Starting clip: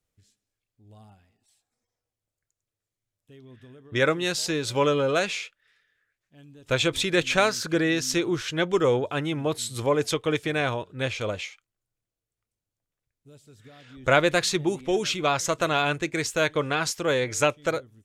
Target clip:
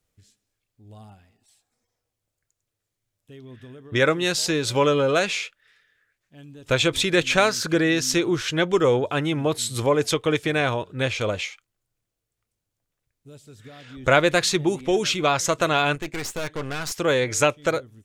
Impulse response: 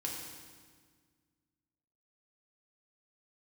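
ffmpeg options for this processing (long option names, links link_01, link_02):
-filter_complex "[0:a]asplit=2[link_01][link_02];[link_02]acompressor=threshold=-29dB:ratio=6,volume=-3dB[link_03];[link_01][link_03]amix=inputs=2:normalize=0,asettb=1/sr,asplit=3[link_04][link_05][link_06];[link_04]atrim=end=15.954[link_07];[link_05]atrim=start=15.95:end=16.92,asetpts=PTS-STARTPTS,afade=type=in:duration=0.004:curve=qsin,afade=type=out:start_time=0.966:duration=0.004:curve=qsin,aeval=exprs='(tanh(22.4*val(0)+0.8)-tanh(0.8))/22.4':channel_layout=same[link_08];[link_06]atrim=start=16.916[link_09];[link_07][link_08]acrossfade=duration=0.004:curve1=hsin:curve2=qsin[link_10];[link_10][link_09]acrossfade=duration=0.004:curve1=qsin:curve2=hsin,volume=1dB"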